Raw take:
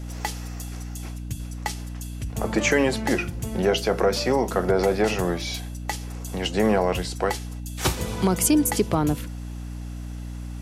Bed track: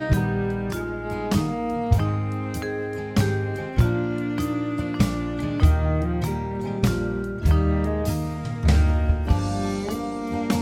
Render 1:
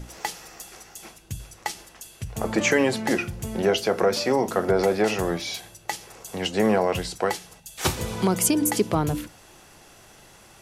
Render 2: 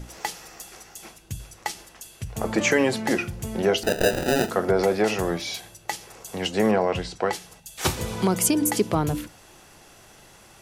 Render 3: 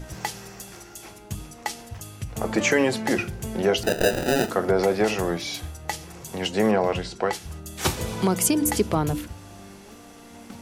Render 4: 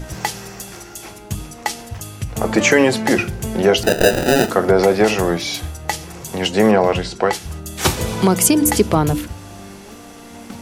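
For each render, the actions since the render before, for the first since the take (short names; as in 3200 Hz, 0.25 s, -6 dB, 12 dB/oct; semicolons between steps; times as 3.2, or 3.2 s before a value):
notches 60/120/180/240/300 Hz
3.83–4.5 sample-rate reducer 1100 Hz; 6.71–7.33 air absorption 78 m
add bed track -19.5 dB
gain +7.5 dB; limiter -1 dBFS, peak gain reduction 1 dB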